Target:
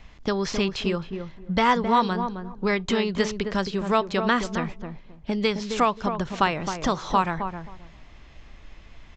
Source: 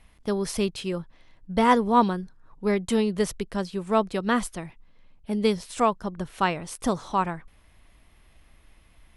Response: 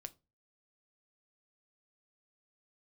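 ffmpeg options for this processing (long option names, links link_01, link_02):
-filter_complex "[0:a]aresample=16000,aresample=44100,acrossover=split=940|2600|6100[link_01][link_02][link_03][link_04];[link_01]acompressor=threshold=-33dB:ratio=4[link_05];[link_02]acompressor=threshold=-30dB:ratio=4[link_06];[link_03]acompressor=threshold=-42dB:ratio=4[link_07];[link_04]acompressor=threshold=-59dB:ratio=4[link_08];[link_05][link_06][link_07][link_08]amix=inputs=4:normalize=0,asplit=2[link_09][link_10];[link_10]adelay=265,lowpass=frequency=900:poles=1,volume=-6dB,asplit=2[link_11][link_12];[link_12]adelay=265,lowpass=frequency=900:poles=1,volume=0.21,asplit=2[link_13][link_14];[link_14]adelay=265,lowpass=frequency=900:poles=1,volume=0.21[link_15];[link_09][link_11][link_13][link_15]amix=inputs=4:normalize=0,asplit=2[link_16][link_17];[1:a]atrim=start_sample=2205,asetrate=48510,aresample=44100[link_18];[link_17][link_18]afir=irnorm=-1:irlink=0,volume=-4dB[link_19];[link_16][link_19]amix=inputs=2:normalize=0,volume=6dB"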